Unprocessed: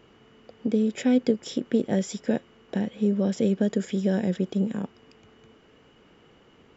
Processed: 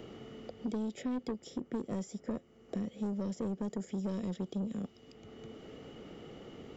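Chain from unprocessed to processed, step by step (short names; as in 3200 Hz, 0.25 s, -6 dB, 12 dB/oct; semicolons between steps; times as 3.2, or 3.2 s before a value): thirty-one-band EQ 1000 Hz -12 dB, 1600 Hz -11 dB, 2500 Hz -7 dB; soft clip -21.5 dBFS, distortion -11 dB; 1.49–4.09 bell 3600 Hz -8 dB 0.86 oct; three-band squash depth 70%; gain -8.5 dB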